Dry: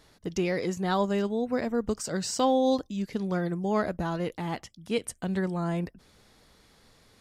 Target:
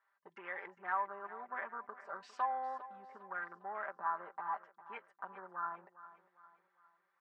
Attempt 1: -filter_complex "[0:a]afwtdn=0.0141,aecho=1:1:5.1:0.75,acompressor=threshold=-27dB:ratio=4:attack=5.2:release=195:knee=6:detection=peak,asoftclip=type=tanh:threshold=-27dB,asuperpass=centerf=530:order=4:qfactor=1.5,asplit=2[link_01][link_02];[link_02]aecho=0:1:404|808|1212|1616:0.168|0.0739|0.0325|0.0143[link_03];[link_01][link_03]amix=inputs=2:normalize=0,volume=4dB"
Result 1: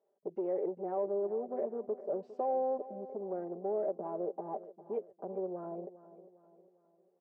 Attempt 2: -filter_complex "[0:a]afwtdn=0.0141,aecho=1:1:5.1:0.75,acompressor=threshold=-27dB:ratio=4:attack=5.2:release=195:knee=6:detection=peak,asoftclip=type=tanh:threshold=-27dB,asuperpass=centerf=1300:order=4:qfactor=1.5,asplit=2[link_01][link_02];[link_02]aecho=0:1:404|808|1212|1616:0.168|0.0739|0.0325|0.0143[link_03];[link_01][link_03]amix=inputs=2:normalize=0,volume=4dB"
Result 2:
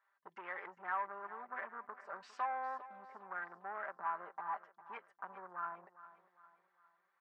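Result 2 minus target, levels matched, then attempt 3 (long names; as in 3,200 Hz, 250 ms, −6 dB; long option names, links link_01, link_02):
soft clipping: distortion +13 dB
-filter_complex "[0:a]afwtdn=0.0141,aecho=1:1:5.1:0.75,acompressor=threshold=-27dB:ratio=4:attack=5.2:release=195:knee=6:detection=peak,asoftclip=type=tanh:threshold=-18.5dB,asuperpass=centerf=1300:order=4:qfactor=1.5,asplit=2[link_01][link_02];[link_02]aecho=0:1:404|808|1212|1616:0.168|0.0739|0.0325|0.0143[link_03];[link_01][link_03]amix=inputs=2:normalize=0,volume=4dB"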